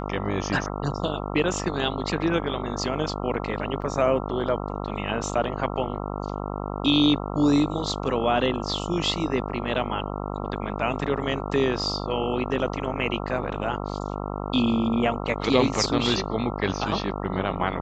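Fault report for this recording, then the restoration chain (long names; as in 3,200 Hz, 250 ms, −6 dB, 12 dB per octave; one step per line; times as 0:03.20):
mains buzz 50 Hz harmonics 27 −31 dBFS
0:03.82: drop-out 3 ms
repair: hum removal 50 Hz, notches 27
repair the gap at 0:03.82, 3 ms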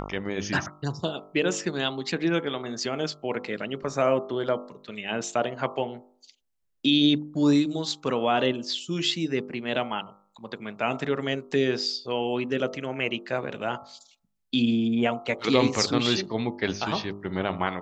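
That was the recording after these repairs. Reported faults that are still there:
none of them is left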